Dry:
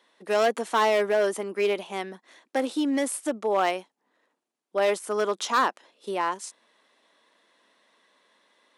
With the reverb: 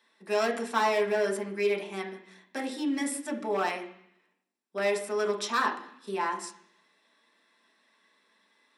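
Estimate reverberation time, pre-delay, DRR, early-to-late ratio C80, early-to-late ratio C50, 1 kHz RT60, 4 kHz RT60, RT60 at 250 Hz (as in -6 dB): 0.65 s, 3 ms, 1.5 dB, 13.0 dB, 10.0 dB, 0.70 s, 0.85 s, 0.95 s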